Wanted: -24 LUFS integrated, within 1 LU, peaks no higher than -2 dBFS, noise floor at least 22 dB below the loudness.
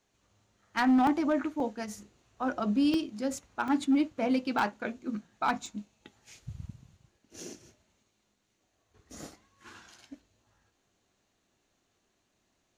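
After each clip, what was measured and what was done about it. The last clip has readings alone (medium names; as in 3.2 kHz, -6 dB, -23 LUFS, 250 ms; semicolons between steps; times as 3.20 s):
clipped samples 0.6%; clipping level -19.5 dBFS; dropouts 7; longest dropout 2.3 ms; loudness -30.0 LUFS; peak level -19.5 dBFS; loudness target -24.0 LUFS
-> clip repair -19.5 dBFS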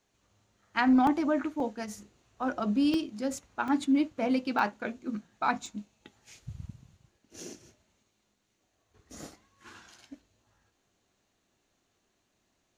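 clipped samples 0.0%; dropouts 7; longest dropout 2.3 ms
-> interpolate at 1.07/1.60/2.94/3.68/4.59/5.66/7.40 s, 2.3 ms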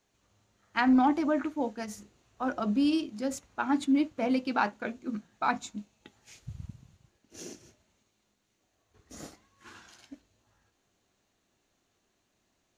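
dropouts 0; loudness -29.5 LUFS; peak level -13.0 dBFS; loudness target -24.0 LUFS
-> trim +5.5 dB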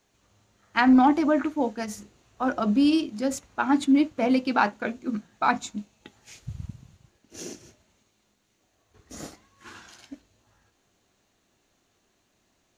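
loudness -24.0 LUFS; peak level -7.5 dBFS; noise floor -71 dBFS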